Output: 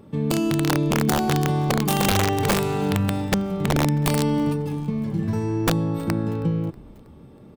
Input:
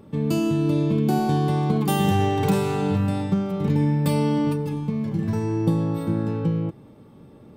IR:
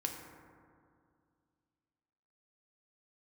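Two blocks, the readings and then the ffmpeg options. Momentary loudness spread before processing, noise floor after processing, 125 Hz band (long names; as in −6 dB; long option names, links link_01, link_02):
5 LU, −46 dBFS, −0.5 dB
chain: -filter_complex "[0:a]aeval=exprs='(mod(4.47*val(0)+1,2)-1)/4.47':channel_layout=same,asplit=5[link_01][link_02][link_03][link_04][link_05];[link_02]adelay=320,afreqshift=-120,volume=-24dB[link_06];[link_03]adelay=640,afreqshift=-240,volume=-28.7dB[link_07];[link_04]adelay=960,afreqshift=-360,volume=-33.5dB[link_08];[link_05]adelay=1280,afreqshift=-480,volume=-38.2dB[link_09];[link_01][link_06][link_07][link_08][link_09]amix=inputs=5:normalize=0"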